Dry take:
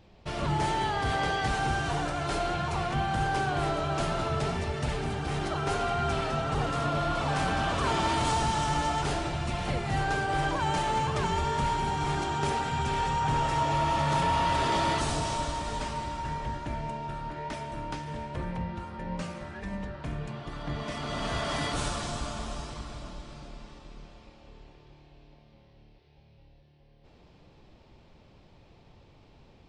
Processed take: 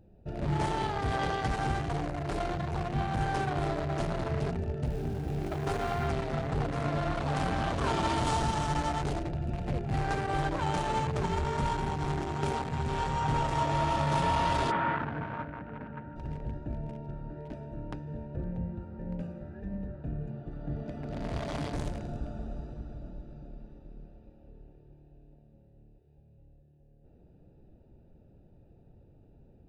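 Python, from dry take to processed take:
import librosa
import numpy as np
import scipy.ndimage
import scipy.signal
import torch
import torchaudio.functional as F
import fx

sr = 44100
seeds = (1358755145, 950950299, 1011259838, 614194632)

y = fx.wiener(x, sr, points=41)
y = fx.sample_gate(y, sr, floor_db=-46.0, at=(4.86, 6.08))
y = fx.cabinet(y, sr, low_hz=130.0, low_slope=12, high_hz=2400.0, hz=(370.0, 630.0, 1500.0), db=(-8, -6, 9), at=(14.7, 16.15), fade=0.02)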